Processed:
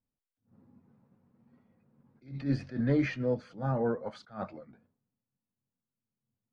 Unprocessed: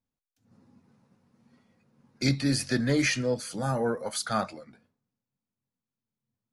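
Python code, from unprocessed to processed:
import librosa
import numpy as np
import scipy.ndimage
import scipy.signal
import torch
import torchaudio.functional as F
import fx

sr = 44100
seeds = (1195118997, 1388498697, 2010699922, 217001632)

y = fx.spacing_loss(x, sr, db_at_10k=43)
y = fx.attack_slew(y, sr, db_per_s=190.0)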